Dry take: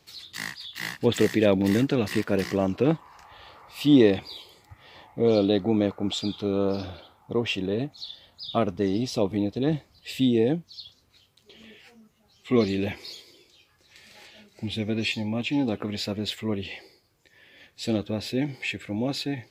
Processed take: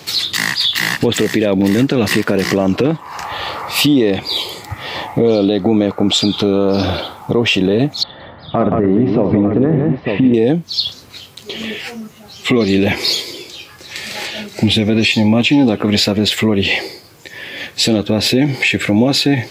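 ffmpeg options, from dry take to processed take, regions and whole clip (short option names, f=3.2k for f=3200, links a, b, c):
-filter_complex "[0:a]asettb=1/sr,asplit=3[a][b][c];[a]atrim=end=8.034[d];[b]atrim=start=8.03:end=10.34,asetpts=PTS-STARTPTS,afade=t=in:d=0.004:c=qsin,afade=t=out:st=2.306:d=0.004:c=qsin,lowpass=f=1.8k:w=0.5412,lowpass=f=1.8k:w=1.3066,acompressor=threshold=-25dB:ratio=10:attack=3.2:release=140:knee=1:detection=peak,aecho=1:1:58|168|898:0.299|0.398|0.237,atrim=end_sample=101871[e];[c]atrim=start=10.336[f];[d][e]acrossfade=d=0.004:c1=hsin:c2=qsin[g];[g][f]acrossfade=d=0.004:c1=qsin:c2=hsin,highpass=99,acompressor=threshold=-32dB:ratio=6,alimiter=level_in=28dB:limit=-1dB:release=50:level=0:latency=1,volume=-3dB"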